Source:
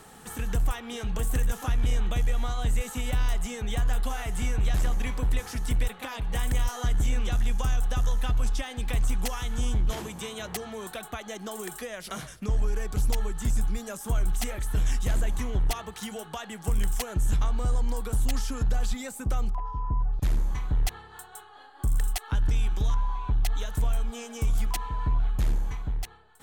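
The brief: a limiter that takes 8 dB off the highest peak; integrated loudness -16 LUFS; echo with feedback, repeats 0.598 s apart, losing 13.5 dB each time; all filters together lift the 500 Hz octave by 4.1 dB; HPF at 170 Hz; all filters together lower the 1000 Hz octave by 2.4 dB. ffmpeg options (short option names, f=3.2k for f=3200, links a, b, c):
-af "highpass=170,equalizer=f=500:t=o:g=6,equalizer=f=1k:t=o:g=-5.5,alimiter=level_in=2.5dB:limit=-24dB:level=0:latency=1,volume=-2.5dB,aecho=1:1:598|1196:0.211|0.0444,volume=21.5dB"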